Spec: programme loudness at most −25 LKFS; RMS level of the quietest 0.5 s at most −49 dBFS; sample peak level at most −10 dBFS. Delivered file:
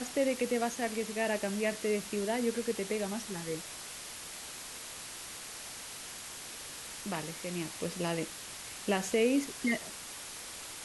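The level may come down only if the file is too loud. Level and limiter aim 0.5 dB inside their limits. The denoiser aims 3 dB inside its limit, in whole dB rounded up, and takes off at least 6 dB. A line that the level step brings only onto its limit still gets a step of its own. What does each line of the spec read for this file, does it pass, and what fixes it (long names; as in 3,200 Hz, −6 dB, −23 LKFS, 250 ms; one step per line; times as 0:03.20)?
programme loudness −35.0 LKFS: in spec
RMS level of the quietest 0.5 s −45 dBFS: out of spec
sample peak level −16.5 dBFS: in spec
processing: broadband denoise 7 dB, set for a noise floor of −45 dBFS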